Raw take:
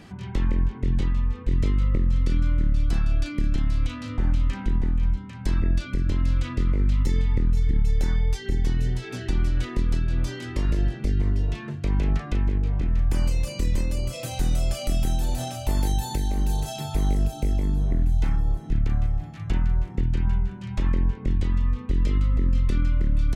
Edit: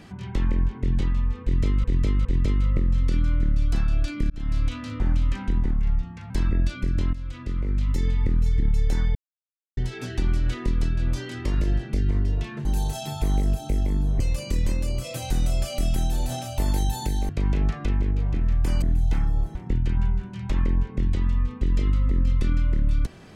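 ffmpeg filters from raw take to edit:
ffmpeg -i in.wav -filter_complex "[0:a]asplit=14[link_01][link_02][link_03][link_04][link_05][link_06][link_07][link_08][link_09][link_10][link_11][link_12][link_13][link_14];[link_01]atrim=end=1.842[link_15];[link_02]atrim=start=1.428:end=1.842[link_16];[link_03]atrim=start=1.428:end=3.48,asetpts=PTS-STARTPTS,afade=type=out:start_time=2.048:duration=0.004:curve=hsin[link_17];[link_04]atrim=start=3.48:end=4.894,asetpts=PTS-STARTPTS,afade=type=in:duration=0.25[link_18];[link_05]atrim=start=4.89:end=5.41,asetpts=PTS-STARTPTS,asetrate=38808,aresample=44100,atrim=end_sample=26059,asetpts=PTS-STARTPTS[link_19];[link_06]atrim=start=5.406:end=6.24,asetpts=PTS-STARTPTS,afade=type=out:start_time=0.83:duration=0.004:curve=hsin:silence=0.199526[link_20];[link_07]atrim=start=6.24:end=8.26,asetpts=PTS-STARTPTS,afade=type=in:duration=1.38:curve=qsin:silence=0.199526,afade=type=out:start_time=2.016:duration=0.004:curve=hsin[link_21];[link_08]atrim=start=8.26:end=8.88,asetpts=PTS-STARTPTS,volume=0[link_22];[link_09]atrim=start=8.88:end=11.762,asetpts=PTS-STARTPTS,afade=type=in:duration=0.004:curve=hsin[link_23];[link_10]atrim=start=16.378:end=17.932[link_24];[link_11]atrim=start=13.288:end=16.382[link_25];[link_12]atrim=start=11.758:end=13.292[link_26];[link_13]atrim=start=17.928:end=18.662[link_27];[link_14]atrim=start=19.828[link_28];[link_15][link_16]acrossfade=duration=0.004:curve1=hsin:curve2=hsin[link_29];[link_17][link_18]concat=n=2:v=0:a=1[link_30];[link_29][link_30]acrossfade=duration=0.004:curve1=hsin:curve2=hsin[link_31];[link_31][link_19]acrossfade=duration=0.004:curve1=hsin:curve2=hsin[link_32];[link_20][link_21][link_22][link_23]concat=n=4:v=0:a=1[link_33];[link_32][link_33]acrossfade=duration=0.004:curve1=hsin:curve2=hsin[link_34];[link_34][link_24]acrossfade=duration=0.004:curve1=hsin:curve2=hsin[link_35];[link_35][link_25]acrossfade=duration=0.004:curve1=hsin:curve2=hsin[link_36];[link_36][link_26]acrossfade=duration=0.004:curve1=hsin:curve2=hsin[link_37];[link_37][link_27]acrossfade=duration=0.004:curve1=hsin:curve2=hsin[link_38];[link_38][link_28]acrossfade=duration=0.004:curve1=hsin:curve2=hsin" out.wav

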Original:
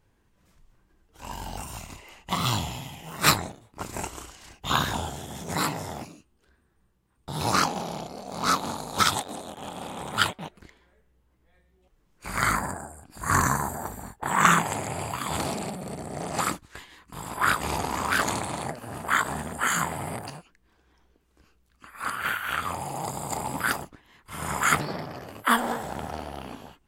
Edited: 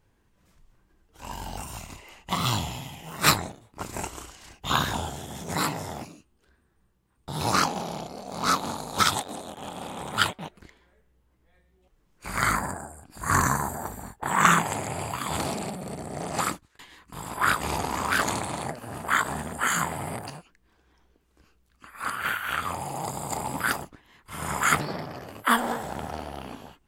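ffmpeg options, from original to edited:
ffmpeg -i in.wav -filter_complex "[0:a]asplit=2[link_01][link_02];[link_01]atrim=end=16.79,asetpts=PTS-STARTPTS,afade=type=out:start_time=16.45:duration=0.34[link_03];[link_02]atrim=start=16.79,asetpts=PTS-STARTPTS,afade=type=in:duration=0.004:curve=hsin[link_04];[link_03][link_04]concat=n=2:v=0:a=1" out.wav

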